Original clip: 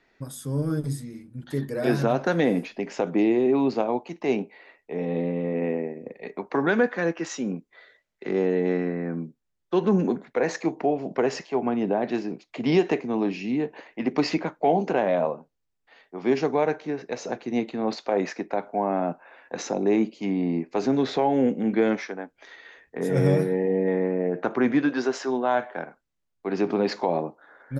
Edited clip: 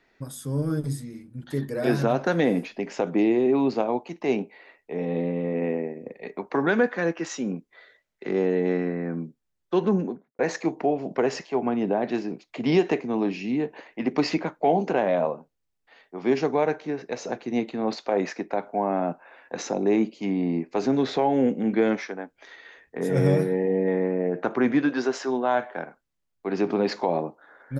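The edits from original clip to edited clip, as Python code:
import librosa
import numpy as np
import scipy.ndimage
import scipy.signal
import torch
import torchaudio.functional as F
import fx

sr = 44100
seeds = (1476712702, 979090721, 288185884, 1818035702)

y = fx.studio_fade_out(x, sr, start_s=9.77, length_s=0.62)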